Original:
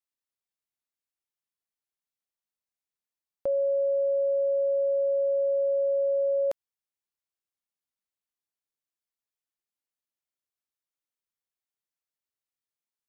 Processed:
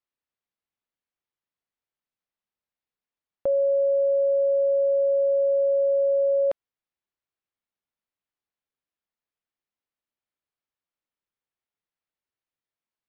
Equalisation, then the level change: distance through air 230 m; +4.5 dB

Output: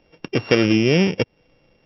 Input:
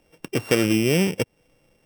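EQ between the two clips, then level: brick-wall FIR low-pass 5.8 kHz; +3.5 dB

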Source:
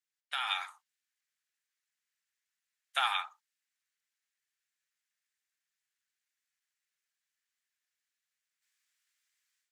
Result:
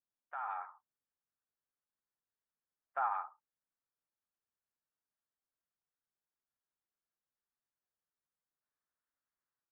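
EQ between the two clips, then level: low-pass 1.2 kHz 24 dB/octave; distance through air 500 m; +3.5 dB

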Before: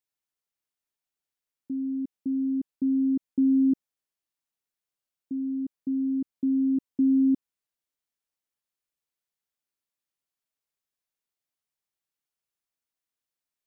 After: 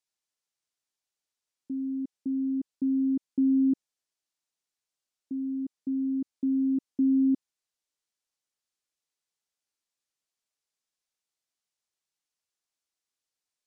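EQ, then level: distance through air 69 m; tone controls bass -4 dB, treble +11 dB; 0.0 dB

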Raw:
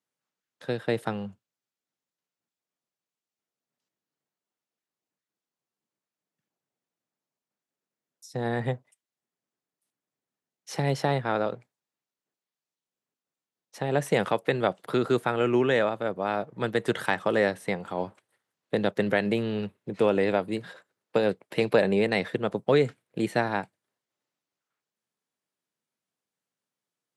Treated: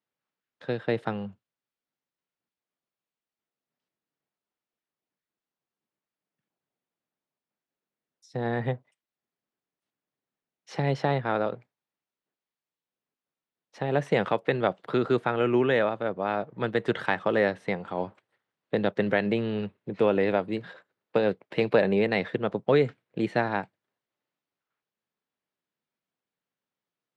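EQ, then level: low-pass 3.8 kHz 12 dB/octave; 0.0 dB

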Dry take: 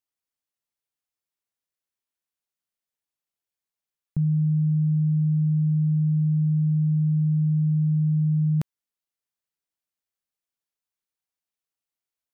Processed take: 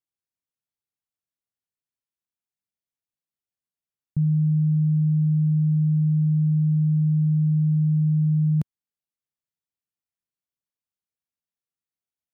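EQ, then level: peaking EQ 120 Hz +10 dB 2.7 oct; -8.0 dB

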